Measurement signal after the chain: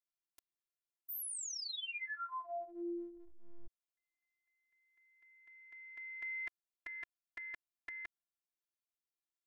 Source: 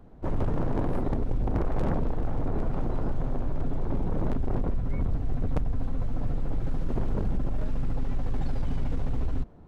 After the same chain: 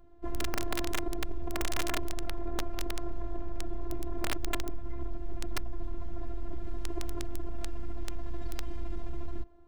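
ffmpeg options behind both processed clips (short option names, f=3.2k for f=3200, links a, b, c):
-af "afftfilt=real='hypot(re,im)*cos(PI*b)':imag='0':win_size=512:overlap=0.75,aeval=exprs='(mod(9.44*val(0)+1,2)-1)/9.44':c=same,volume=-2.5dB"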